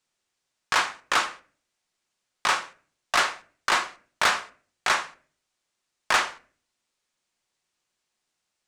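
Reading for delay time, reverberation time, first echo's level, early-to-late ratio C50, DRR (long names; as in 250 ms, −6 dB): no echo audible, 0.45 s, no echo audible, 18.5 dB, 11.0 dB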